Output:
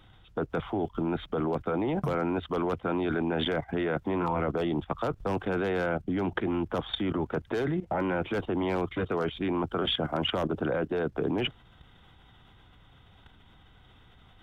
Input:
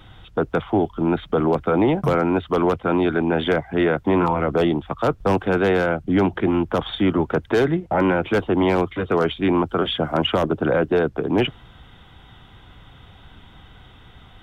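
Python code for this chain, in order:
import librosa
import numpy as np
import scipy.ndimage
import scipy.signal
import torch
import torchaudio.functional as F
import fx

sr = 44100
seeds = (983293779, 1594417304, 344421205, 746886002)

y = fx.level_steps(x, sr, step_db=14)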